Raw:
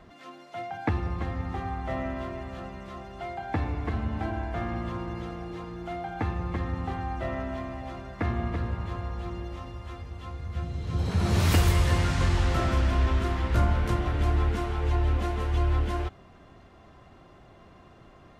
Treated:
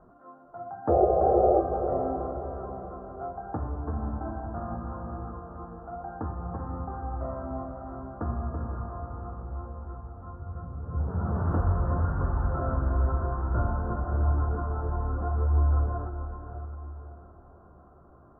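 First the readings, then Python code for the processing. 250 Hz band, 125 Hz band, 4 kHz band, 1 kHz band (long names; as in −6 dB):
−2.5 dB, −2.0 dB, below −40 dB, +2.0 dB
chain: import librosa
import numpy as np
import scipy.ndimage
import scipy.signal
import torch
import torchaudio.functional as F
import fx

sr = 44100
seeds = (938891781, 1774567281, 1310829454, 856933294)

y = fx.hum_notches(x, sr, base_hz=50, count=7)
y = fx.spec_paint(y, sr, seeds[0], shape='noise', start_s=0.88, length_s=0.72, low_hz=330.0, high_hz=800.0, level_db=-19.0)
y = fx.echo_diffused(y, sr, ms=502, feedback_pct=43, wet_db=-7.5)
y = fx.chorus_voices(y, sr, voices=2, hz=0.77, base_ms=18, depth_ms=4.8, mix_pct=30)
y = scipy.signal.sosfilt(scipy.signal.ellip(4, 1.0, 40, 1400.0, 'lowpass', fs=sr, output='sos'), y)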